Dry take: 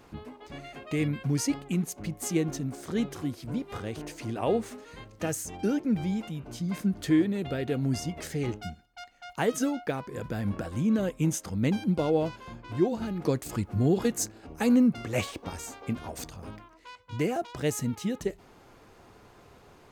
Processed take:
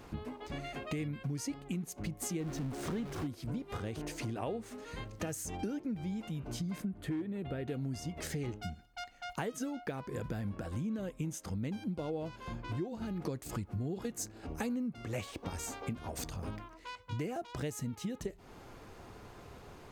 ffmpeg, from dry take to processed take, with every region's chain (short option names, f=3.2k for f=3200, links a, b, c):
-filter_complex "[0:a]asettb=1/sr,asplit=3[a][b][c];[a]atrim=end=2.404[d];[b]atrim=start=2.4:end=3.27,asetpts=PTS-STARTPTS,afade=t=in:d=0.004:c=qsin,afade=t=out:st=0.866:d=0.004:c=qsin,aeval=exprs='val(0)+0.5*0.0251*sgn(val(0))':c=same,highshelf=f=5.9k:g=-10[e];[c]atrim=start=3.266[f];[d][e]acrossfade=d=0.004:c1=hsin:c2=qsin[g];[g][f]acrossfade=d=0.004:c1=qsin:c2=hsin,asettb=1/sr,asplit=3[h][i][j];[h]atrim=end=6.824[k];[i]atrim=start=6.82:end=7.68,asetpts=PTS-STARTPTS,afade=t=in:d=0.004:c=qsin,afade=t=out:st=0.856:d=0.004:c=qsin,lowpass=12k,equalizer=f=5.6k:w=1.2:g=-14,volume=17.5dB,asoftclip=hard,volume=-17.5dB[l];[j]atrim=start=7.676[m];[k][l]acrossfade=d=0.004:c1=hsin:c2=qsin[n];[n][m]acrossfade=d=0.004:c1=qsin:c2=hsin,lowshelf=f=130:g=5,acompressor=threshold=-37dB:ratio=6,volume=1.5dB"